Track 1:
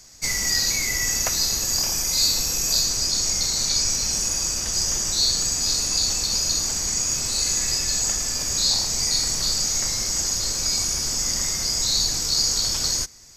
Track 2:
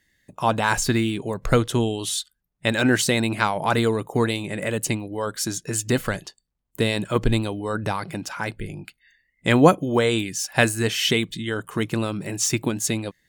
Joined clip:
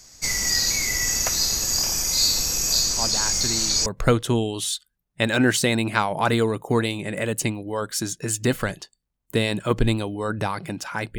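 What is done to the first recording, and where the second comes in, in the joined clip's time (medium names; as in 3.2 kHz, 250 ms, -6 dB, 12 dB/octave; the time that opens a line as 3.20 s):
track 1
2.91 s: add track 2 from 0.36 s 0.95 s -10.5 dB
3.86 s: go over to track 2 from 1.31 s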